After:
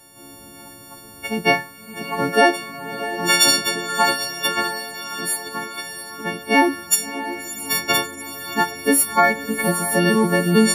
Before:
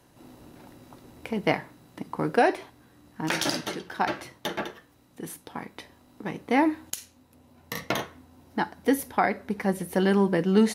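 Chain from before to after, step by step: partials quantised in pitch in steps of 4 st; echo that smears into a reverb 643 ms, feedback 60%, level -11 dB; trim +4.5 dB

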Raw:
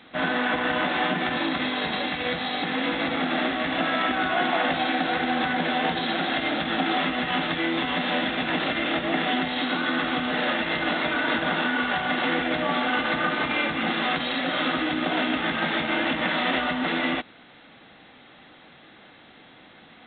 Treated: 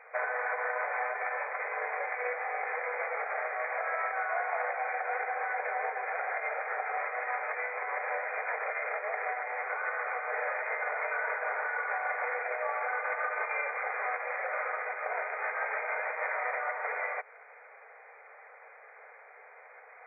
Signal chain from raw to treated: compression, threshold -28 dBFS, peak gain reduction 8.5 dB; brick-wall FIR band-pass 410–2500 Hz

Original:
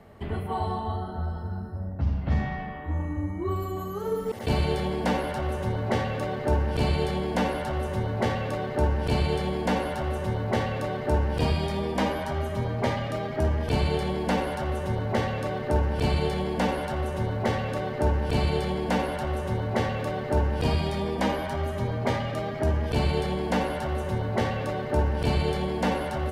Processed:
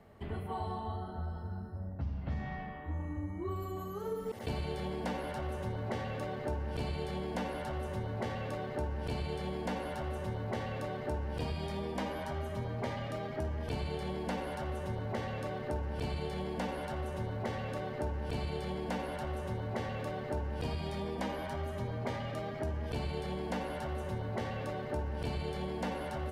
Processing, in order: compression 4:1, threshold -25 dBFS, peak gain reduction 6 dB; trim -7.5 dB

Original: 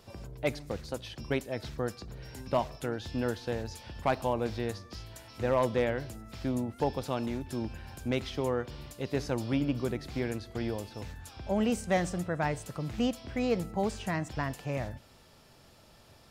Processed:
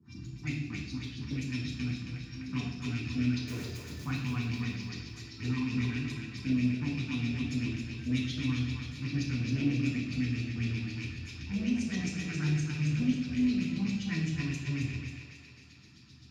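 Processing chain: rattle on loud lows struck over -38 dBFS, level -26 dBFS; FFT band-reject 340–700 Hz; LFO low-pass saw up 7.7 Hz 380–4900 Hz; amplifier tone stack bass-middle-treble 10-0-1; in parallel at +1.5 dB: compression, threshold -47 dBFS, peak gain reduction 7 dB; on the sum: saturation -36 dBFS, distortion -20 dB; RIAA curve recording; 3.40–4.05 s: integer overflow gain 51.5 dB; two-band feedback delay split 420 Hz, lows 112 ms, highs 271 ms, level -5.5 dB; reverberation RT60 0.70 s, pre-delay 3 ms, DRR -5.5 dB; trim +1.5 dB

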